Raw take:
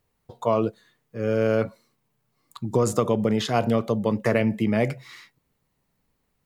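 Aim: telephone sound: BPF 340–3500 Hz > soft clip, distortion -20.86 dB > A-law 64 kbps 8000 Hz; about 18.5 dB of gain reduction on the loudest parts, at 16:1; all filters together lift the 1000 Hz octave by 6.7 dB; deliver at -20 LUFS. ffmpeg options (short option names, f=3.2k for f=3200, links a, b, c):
-af "equalizer=f=1k:t=o:g=9,acompressor=threshold=-32dB:ratio=16,highpass=340,lowpass=3.5k,asoftclip=threshold=-25dB,volume=21.5dB" -ar 8000 -c:a pcm_alaw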